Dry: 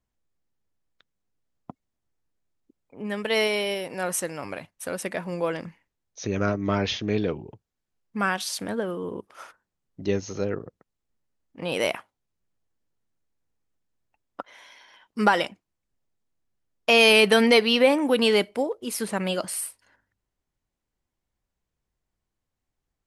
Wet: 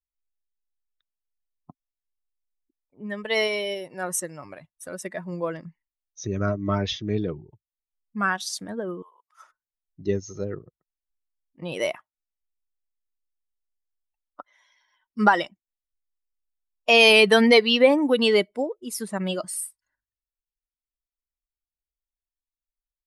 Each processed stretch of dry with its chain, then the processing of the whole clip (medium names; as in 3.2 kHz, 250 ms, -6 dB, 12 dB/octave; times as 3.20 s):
9.02–9.42 s: high-pass 760 Hz 24 dB/octave + treble shelf 7.9 kHz +6.5 dB
whole clip: expander on every frequency bin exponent 1.5; low-pass 11 kHz; trim +3.5 dB